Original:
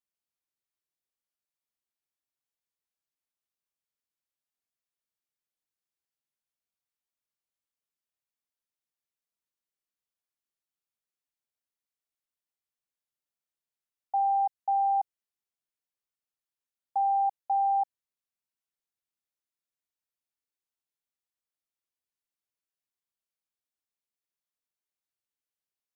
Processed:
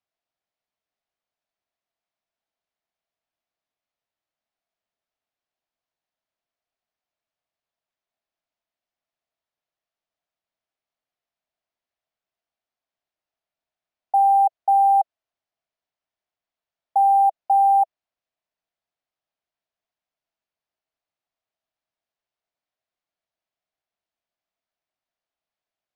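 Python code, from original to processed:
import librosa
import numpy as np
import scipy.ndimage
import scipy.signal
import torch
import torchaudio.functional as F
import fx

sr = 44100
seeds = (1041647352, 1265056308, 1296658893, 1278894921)

y = fx.highpass_res(x, sr, hz=660.0, q=6.4)
y = np.interp(np.arange(len(y)), np.arange(len(y))[::4], y[::4])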